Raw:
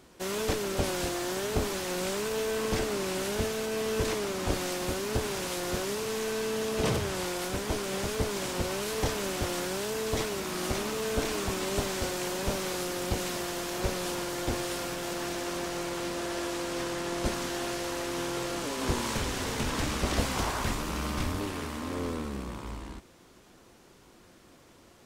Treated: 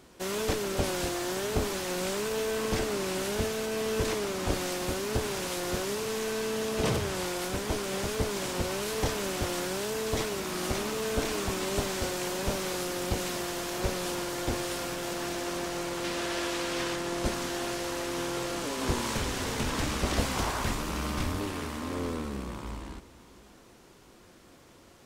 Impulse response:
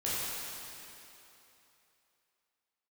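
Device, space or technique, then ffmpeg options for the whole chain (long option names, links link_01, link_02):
ducked reverb: -filter_complex "[0:a]asettb=1/sr,asplit=3[link_01][link_02][link_03];[link_01]atrim=end=16.044[link_04];[link_02]atrim=start=16.04:end=16.96,asetpts=PTS-STARTPTS,afade=type=in:duration=0.004:curve=qsin,afade=type=out:start_time=0.916:duration=0.004:curve=qsin,equalizer=frequency=2800:width=0.6:gain=5[link_05];[link_03]atrim=start=16.956[link_06];[link_04][link_05]acrossfade=duration=0.004:curve1=hsin:curve2=qsin[link_07];[link_07][link_06]acrossfade=duration=0.004:curve1=qsin:curve2=hsin,asplit=3[link_08][link_09][link_10];[1:a]atrim=start_sample=2205[link_11];[link_09][link_11]afir=irnorm=-1:irlink=0[link_12];[link_10]apad=whole_len=1104864[link_13];[link_12][link_13]sidechaincompress=threshold=-40dB:ratio=8:attack=16:release=806,volume=-18dB[link_14];[link_08][link_14]amix=inputs=2:normalize=0"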